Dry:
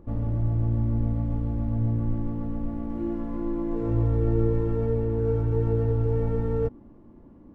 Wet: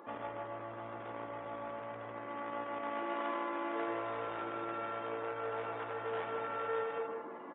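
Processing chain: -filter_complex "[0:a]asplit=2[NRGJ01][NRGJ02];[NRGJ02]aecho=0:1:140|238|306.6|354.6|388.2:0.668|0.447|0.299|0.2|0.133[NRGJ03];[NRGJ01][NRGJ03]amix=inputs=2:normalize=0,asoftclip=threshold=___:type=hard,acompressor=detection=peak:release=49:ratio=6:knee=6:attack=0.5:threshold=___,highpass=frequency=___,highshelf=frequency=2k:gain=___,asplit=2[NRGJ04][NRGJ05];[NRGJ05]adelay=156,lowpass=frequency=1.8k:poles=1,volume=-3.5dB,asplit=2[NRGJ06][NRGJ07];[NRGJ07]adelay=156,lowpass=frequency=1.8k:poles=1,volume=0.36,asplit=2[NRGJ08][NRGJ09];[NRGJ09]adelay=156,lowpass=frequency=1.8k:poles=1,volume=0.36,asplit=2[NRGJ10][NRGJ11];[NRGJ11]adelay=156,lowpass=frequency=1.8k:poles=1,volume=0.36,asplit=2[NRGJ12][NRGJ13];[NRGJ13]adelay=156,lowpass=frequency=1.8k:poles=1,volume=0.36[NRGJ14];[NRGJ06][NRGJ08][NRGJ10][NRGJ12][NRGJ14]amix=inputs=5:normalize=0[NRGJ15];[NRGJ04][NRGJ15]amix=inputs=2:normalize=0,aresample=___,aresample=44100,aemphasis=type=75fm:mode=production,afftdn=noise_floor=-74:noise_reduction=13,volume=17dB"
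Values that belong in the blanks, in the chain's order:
-14dB, -34dB, 980, 2, 8000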